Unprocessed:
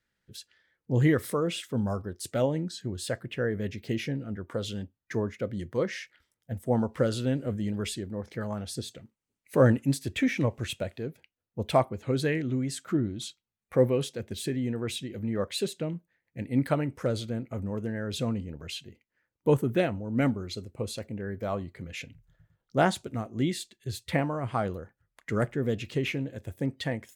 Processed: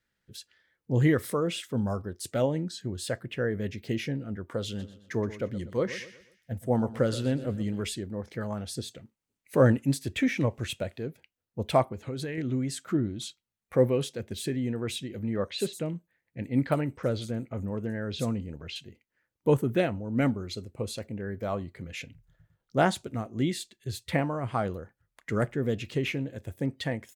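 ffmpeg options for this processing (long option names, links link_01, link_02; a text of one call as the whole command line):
ffmpeg -i in.wav -filter_complex "[0:a]asplit=3[link_01][link_02][link_03];[link_01]afade=type=out:start_time=4.78:duration=0.02[link_04];[link_02]aecho=1:1:123|246|369|492:0.178|0.0711|0.0285|0.0114,afade=type=in:start_time=4.78:duration=0.02,afade=type=out:start_time=7.84:duration=0.02[link_05];[link_03]afade=type=in:start_time=7.84:duration=0.02[link_06];[link_04][link_05][link_06]amix=inputs=3:normalize=0,asettb=1/sr,asplit=3[link_07][link_08][link_09];[link_07]atrim=end=11.924[link_10];[link_08]atrim=start=11.92:end=12.38,asetpts=PTS-STARTPTS,afade=type=in:duration=0.004:curve=qsin,afade=type=out:start_time=0.456:duration=0.004:curve=qsin,acompressor=threshold=-30dB:ratio=10:attack=3.2:release=140:knee=1:detection=peak[link_11];[link_09]atrim=start=12.376[link_12];[link_10][link_11]acrossfade=duration=0.004:curve1=hsin:curve2=qsin[link_13];[link_13][link_12]acrossfade=duration=0.004:curve1=qsin:curve2=hsin,asettb=1/sr,asplit=3[link_14][link_15][link_16];[link_14]atrim=end=15.364[link_17];[link_15]atrim=start=15.36:end=18.76,asetpts=PTS-STARTPTS,afade=type=in:duration=0.004:curve=qsin,afade=type=out:start_time=3.396:duration=0.004:curve=qsin,acrossover=split=5400[link_18][link_19];[link_19]adelay=60[link_20];[link_18][link_20]amix=inputs=2:normalize=0,atrim=end_sample=149940[link_21];[link_16]atrim=start=18.756[link_22];[link_17][link_21]acrossfade=duration=0.004:curve1=hsin:curve2=qsin[link_23];[link_23][link_22]acrossfade=duration=0.004:curve1=qsin:curve2=hsin" out.wav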